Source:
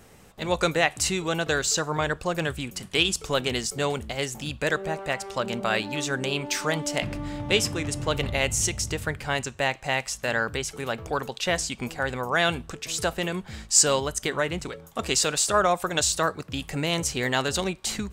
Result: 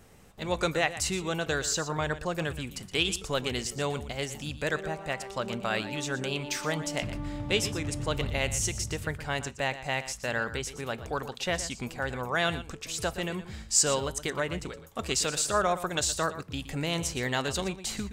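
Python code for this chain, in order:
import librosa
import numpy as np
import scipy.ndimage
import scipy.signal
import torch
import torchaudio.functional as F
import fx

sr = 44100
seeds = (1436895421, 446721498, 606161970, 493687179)

p1 = fx.low_shelf(x, sr, hz=130.0, db=4.5)
p2 = p1 + fx.echo_single(p1, sr, ms=119, db=-13.5, dry=0)
y = p2 * librosa.db_to_amplitude(-5.0)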